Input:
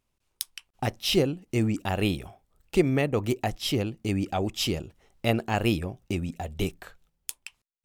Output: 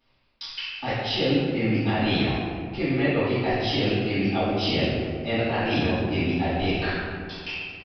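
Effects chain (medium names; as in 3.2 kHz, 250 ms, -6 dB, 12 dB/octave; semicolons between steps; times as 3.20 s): tilt EQ +2 dB/octave; reverse; compression 10:1, threshold -38 dBFS, peak gain reduction 19.5 dB; reverse; feedback echo behind a band-pass 131 ms, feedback 73%, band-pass 430 Hz, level -10 dB; reverberation RT60 1.5 s, pre-delay 3 ms, DRR -16 dB; resampled via 11.025 kHz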